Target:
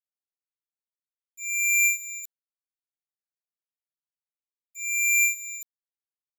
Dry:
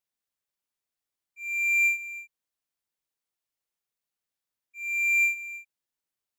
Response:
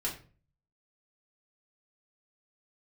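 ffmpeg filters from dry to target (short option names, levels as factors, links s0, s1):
-filter_complex "[0:a]asplit=2[s0][s1];[s1]adelay=139.9,volume=0.0794,highshelf=f=4000:g=-3.15[s2];[s0][s2]amix=inputs=2:normalize=0,aeval=exprs='sgn(val(0))*max(abs(val(0))-0.00355,0)':c=same,areverse,acompressor=mode=upward:threshold=0.00631:ratio=2.5,areverse,aexciter=amount=4.1:drive=5.8:freq=3100"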